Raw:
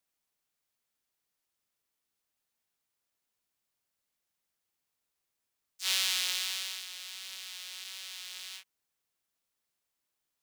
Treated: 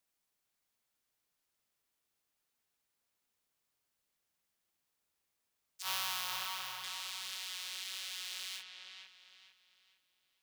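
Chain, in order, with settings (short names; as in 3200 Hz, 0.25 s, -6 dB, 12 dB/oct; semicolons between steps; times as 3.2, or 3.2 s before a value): 5.82–6.84 graphic EQ 125/250/500/1000/2000/4000/8000 Hz +11/-10/-4/+11/-8/-7/-10 dB; on a send: dark delay 0.453 s, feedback 34%, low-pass 3700 Hz, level -5 dB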